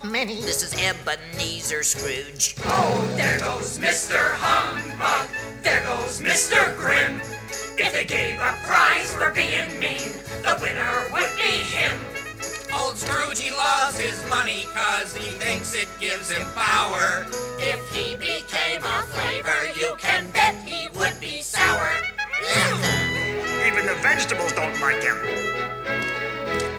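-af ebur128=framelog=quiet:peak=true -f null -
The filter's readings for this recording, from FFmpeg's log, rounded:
Integrated loudness:
  I:         -22.2 LUFS
  Threshold: -32.2 LUFS
Loudness range:
  LRA:         2.9 LU
  Threshold: -42.1 LUFS
  LRA low:   -23.6 LUFS
  LRA high:  -20.6 LUFS
True peak:
  Peak:       -6.2 dBFS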